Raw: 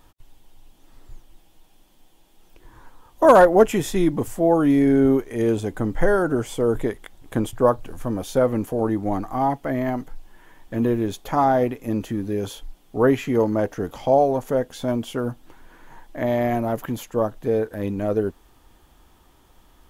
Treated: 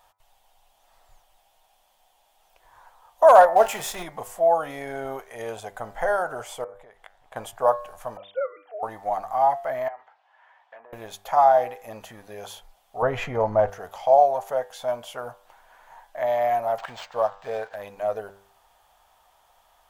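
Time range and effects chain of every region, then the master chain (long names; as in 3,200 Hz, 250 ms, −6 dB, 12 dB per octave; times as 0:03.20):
0:03.56–0:04.03: converter with a step at zero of −29 dBFS + double-tracking delay 28 ms −12 dB
0:06.64–0:07.36: low-pass filter 2,600 Hz 6 dB per octave + downward compressor 12 to 1, threshold −34 dBFS
0:08.17–0:08.83: three sine waves on the formant tracks + high-pass filter 960 Hz 6 dB per octave
0:09.88–0:10.93: treble cut that deepens with the level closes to 1,100 Hz, closed at −18 dBFS + band-pass filter 770–2,600 Hz + downward compressor 5 to 1, threshold −38 dBFS
0:13.02–0:13.70: RIAA equalisation playback + envelope flattener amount 50%
0:16.78–0:17.76: running median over 5 samples + high-shelf EQ 2,200 Hz +11 dB + linearly interpolated sample-rate reduction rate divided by 4×
whole clip: low shelf with overshoot 460 Hz −14 dB, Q 3; hum removal 98.95 Hz, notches 24; level −3.5 dB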